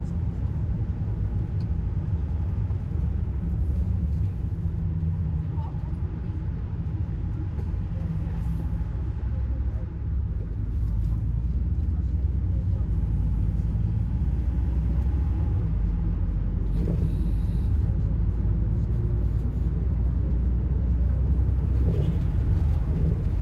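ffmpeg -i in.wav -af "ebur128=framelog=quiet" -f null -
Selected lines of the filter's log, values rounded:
Integrated loudness:
  I:         -27.4 LUFS
  Threshold: -37.4 LUFS
Loudness range:
  LRA:         4.3 LU
  Threshold: -47.6 LUFS
  LRA low:   -30.0 LUFS
  LRA high:  -25.7 LUFS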